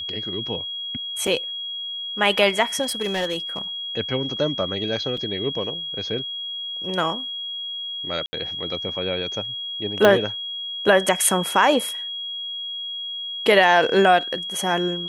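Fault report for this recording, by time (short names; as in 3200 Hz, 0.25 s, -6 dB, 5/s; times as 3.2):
tone 3300 Hz -28 dBFS
1.27 gap 4.3 ms
2.82–3.59 clipped -20 dBFS
5.17 gap 4.6 ms
8.26–8.33 gap 70 ms
10.05 pop -5 dBFS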